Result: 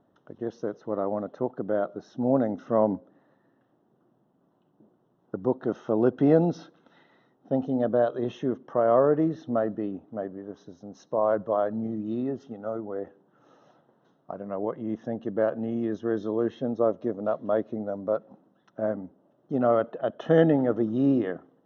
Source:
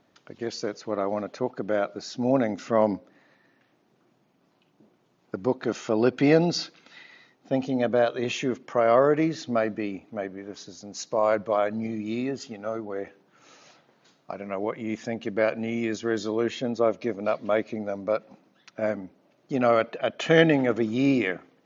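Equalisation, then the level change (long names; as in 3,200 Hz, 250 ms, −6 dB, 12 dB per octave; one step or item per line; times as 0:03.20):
moving average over 19 samples
0.0 dB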